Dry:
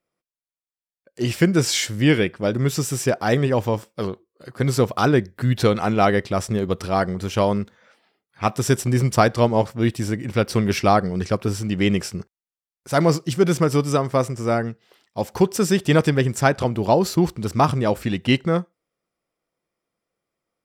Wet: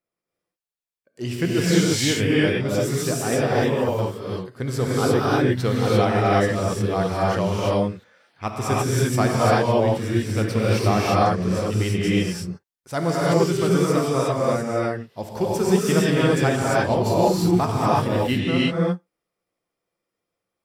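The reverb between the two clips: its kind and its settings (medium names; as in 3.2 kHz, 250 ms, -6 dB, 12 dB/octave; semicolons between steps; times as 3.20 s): gated-style reverb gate 370 ms rising, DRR -6.5 dB; trim -7.5 dB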